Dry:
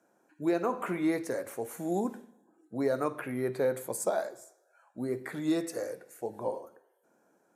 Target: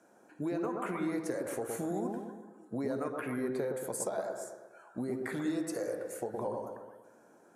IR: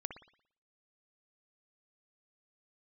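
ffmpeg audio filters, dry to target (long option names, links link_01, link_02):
-filter_complex "[0:a]acompressor=threshold=-40dB:ratio=6[link_01];[1:a]atrim=start_sample=2205,asetrate=22050,aresample=44100[link_02];[link_01][link_02]afir=irnorm=-1:irlink=0,volume=5.5dB"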